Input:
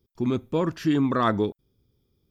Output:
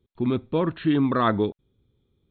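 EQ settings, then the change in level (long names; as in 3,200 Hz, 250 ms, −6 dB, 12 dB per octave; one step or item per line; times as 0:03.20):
linear-phase brick-wall low-pass 4,300 Hz
+1.0 dB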